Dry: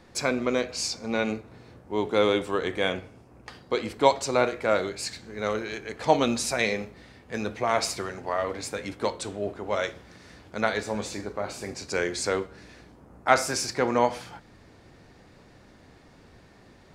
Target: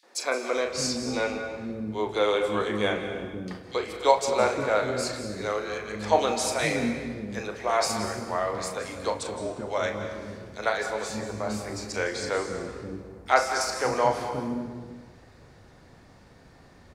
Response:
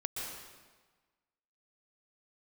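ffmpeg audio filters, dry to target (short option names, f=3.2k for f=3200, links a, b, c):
-filter_complex "[0:a]acrossover=split=330|2800[a][b][c];[b]adelay=30[d];[a]adelay=560[e];[e][d][c]amix=inputs=3:normalize=0,asplit=2[f][g];[1:a]atrim=start_sample=2205,adelay=38[h];[g][h]afir=irnorm=-1:irlink=0,volume=-7dB[i];[f][i]amix=inputs=2:normalize=0,asettb=1/sr,asplit=3[j][k][l];[j]atrim=end=12.054[m];[k]atrim=start=12.05:end=13.61,asetpts=PTS-STARTPTS,afade=t=in:d=0.004:c=qsin,afade=t=out:st=1.556:d=0.004:c=qsin,acrossover=split=5400[n][o];[o]acompressor=threshold=-43dB:ratio=4:attack=1:release=60[p];[n][p]amix=inputs=2:normalize=0[q];[l]atrim=start=13.606[r];[m][q]acrossfade=d=0.004:c1=hsin:c2=qsin[s];[s][r]acrossfade=d=0.004:c1=qsin:c2=hsin"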